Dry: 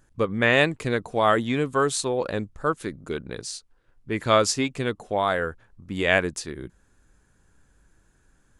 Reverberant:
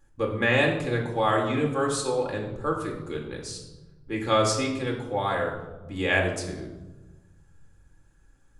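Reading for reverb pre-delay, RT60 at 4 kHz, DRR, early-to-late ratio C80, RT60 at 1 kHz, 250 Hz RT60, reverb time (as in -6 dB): 4 ms, 0.70 s, -0.5 dB, 8.5 dB, 1.1 s, 1.8 s, 1.2 s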